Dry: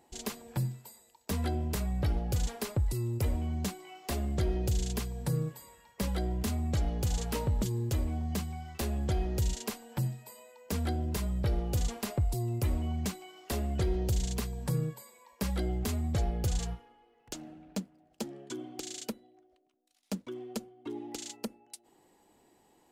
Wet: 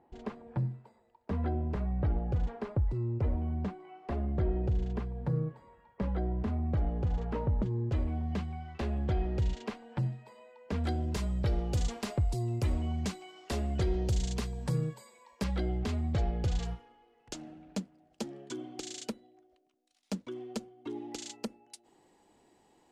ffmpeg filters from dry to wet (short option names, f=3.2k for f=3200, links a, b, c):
-af "asetnsamples=n=441:p=0,asendcmd='7.92 lowpass f 2700;10.84 lowpass f 7000;15.44 lowpass f 4100;16.65 lowpass f 8000',lowpass=1.4k"